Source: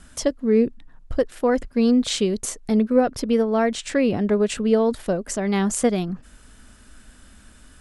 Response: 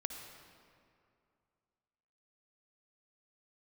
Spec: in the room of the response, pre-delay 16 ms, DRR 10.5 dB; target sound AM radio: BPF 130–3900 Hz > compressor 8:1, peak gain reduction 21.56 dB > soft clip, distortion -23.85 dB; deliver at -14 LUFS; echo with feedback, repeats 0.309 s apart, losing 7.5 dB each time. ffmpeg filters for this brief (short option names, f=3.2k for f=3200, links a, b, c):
-filter_complex "[0:a]aecho=1:1:309|618|927|1236|1545:0.422|0.177|0.0744|0.0312|0.0131,asplit=2[a][b];[1:a]atrim=start_sample=2205,adelay=16[c];[b][c]afir=irnorm=-1:irlink=0,volume=-10dB[d];[a][d]amix=inputs=2:normalize=0,highpass=130,lowpass=3.9k,acompressor=threshold=-33dB:ratio=8,asoftclip=threshold=-25.5dB,volume=23.5dB"